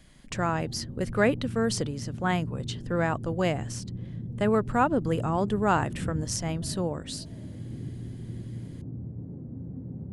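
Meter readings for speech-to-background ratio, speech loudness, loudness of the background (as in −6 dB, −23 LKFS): 9.5 dB, −28.5 LKFS, −38.0 LKFS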